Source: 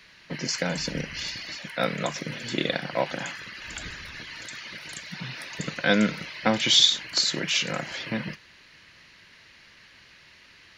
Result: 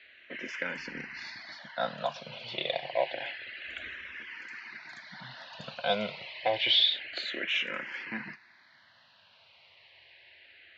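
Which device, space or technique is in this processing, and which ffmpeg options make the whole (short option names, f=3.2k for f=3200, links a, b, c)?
barber-pole phaser into a guitar amplifier: -filter_complex "[0:a]bass=f=250:g=-11,treble=f=4k:g=-1,asplit=2[a][b];[b]afreqshift=-0.28[c];[a][c]amix=inputs=2:normalize=1,asoftclip=type=tanh:threshold=-14dB,highpass=80,equalizer=f=90:t=q:w=4:g=4,equalizer=f=170:t=q:w=4:g=-8,equalizer=f=300:t=q:w=4:g=-6,equalizer=f=450:t=q:w=4:g=-6,equalizer=f=690:t=q:w=4:g=4,equalizer=f=1.2k:t=q:w=4:g=-6,lowpass=f=3.8k:w=0.5412,lowpass=f=3.8k:w=1.3066"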